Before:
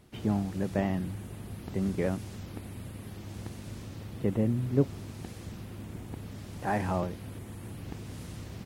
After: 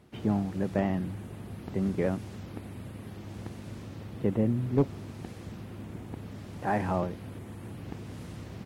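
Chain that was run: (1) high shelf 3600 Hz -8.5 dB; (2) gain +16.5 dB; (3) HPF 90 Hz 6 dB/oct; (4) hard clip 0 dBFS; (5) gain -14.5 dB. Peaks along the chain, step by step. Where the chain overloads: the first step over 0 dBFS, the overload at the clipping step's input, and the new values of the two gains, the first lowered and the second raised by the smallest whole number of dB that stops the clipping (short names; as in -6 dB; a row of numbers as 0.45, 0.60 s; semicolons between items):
-12.0, +4.5, +4.5, 0.0, -14.5 dBFS; step 2, 4.5 dB; step 2 +11.5 dB, step 5 -9.5 dB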